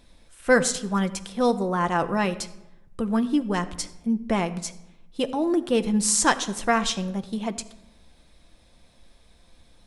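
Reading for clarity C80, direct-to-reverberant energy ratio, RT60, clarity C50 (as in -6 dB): 16.5 dB, 8.5 dB, 0.90 s, 15.5 dB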